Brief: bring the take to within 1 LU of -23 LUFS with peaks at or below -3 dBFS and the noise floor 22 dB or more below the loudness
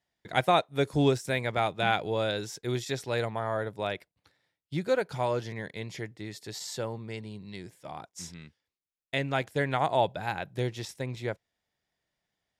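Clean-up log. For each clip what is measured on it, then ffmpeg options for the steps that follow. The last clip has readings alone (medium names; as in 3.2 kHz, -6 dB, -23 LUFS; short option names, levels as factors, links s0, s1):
loudness -30.5 LUFS; peak level -9.0 dBFS; loudness target -23.0 LUFS
-> -af "volume=2.37,alimiter=limit=0.708:level=0:latency=1"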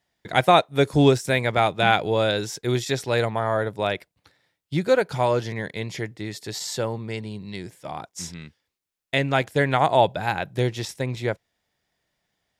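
loudness -23.0 LUFS; peak level -3.0 dBFS; noise floor -81 dBFS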